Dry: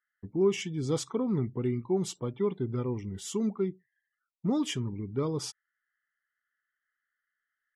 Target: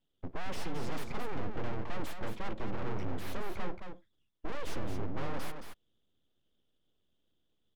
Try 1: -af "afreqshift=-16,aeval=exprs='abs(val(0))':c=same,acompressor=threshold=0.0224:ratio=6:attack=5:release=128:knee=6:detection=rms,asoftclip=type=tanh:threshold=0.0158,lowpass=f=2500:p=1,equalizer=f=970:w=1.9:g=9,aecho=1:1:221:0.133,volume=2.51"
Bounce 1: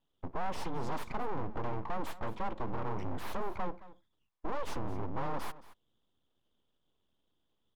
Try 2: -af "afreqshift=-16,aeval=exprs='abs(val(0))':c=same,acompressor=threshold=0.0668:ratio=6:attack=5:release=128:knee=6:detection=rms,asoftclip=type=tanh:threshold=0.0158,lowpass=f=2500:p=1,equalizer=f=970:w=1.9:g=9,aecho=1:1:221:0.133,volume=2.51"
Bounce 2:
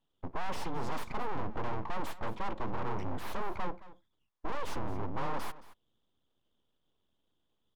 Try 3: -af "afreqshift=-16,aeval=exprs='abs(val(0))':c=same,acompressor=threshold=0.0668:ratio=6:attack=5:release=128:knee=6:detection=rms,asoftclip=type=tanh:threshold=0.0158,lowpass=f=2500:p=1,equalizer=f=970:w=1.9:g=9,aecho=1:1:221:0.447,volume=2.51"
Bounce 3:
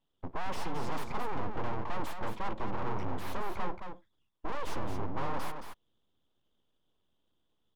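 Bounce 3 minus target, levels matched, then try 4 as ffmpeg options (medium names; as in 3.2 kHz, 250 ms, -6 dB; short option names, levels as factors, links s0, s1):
1 kHz band +4.0 dB
-af "afreqshift=-16,aeval=exprs='abs(val(0))':c=same,acompressor=threshold=0.0668:ratio=6:attack=5:release=128:knee=6:detection=rms,asoftclip=type=tanh:threshold=0.0158,lowpass=f=2500:p=1,aecho=1:1:221:0.447,volume=2.51"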